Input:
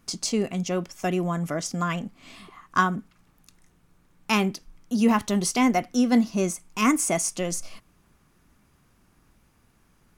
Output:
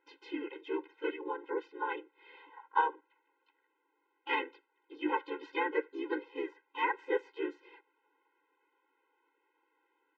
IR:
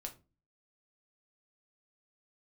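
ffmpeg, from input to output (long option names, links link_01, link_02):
-filter_complex "[0:a]highpass=frequency=170:width_type=q:width=0.5412,highpass=frequency=170:width_type=q:width=1.307,lowpass=frequency=3000:width_type=q:width=0.5176,lowpass=frequency=3000:width_type=q:width=0.7071,lowpass=frequency=3000:width_type=q:width=1.932,afreqshift=-160,asplit=4[link_01][link_02][link_03][link_04];[link_02]asetrate=35002,aresample=44100,atempo=1.25992,volume=-5dB[link_05];[link_03]asetrate=37084,aresample=44100,atempo=1.18921,volume=-4dB[link_06];[link_04]asetrate=52444,aresample=44100,atempo=0.840896,volume=-5dB[link_07];[link_01][link_05][link_06][link_07]amix=inputs=4:normalize=0,afftfilt=real='re*eq(mod(floor(b*sr/1024/270),2),1)':imag='im*eq(mod(floor(b*sr/1024/270),2),1)':win_size=1024:overlap=0.75,volume=-6.5dB"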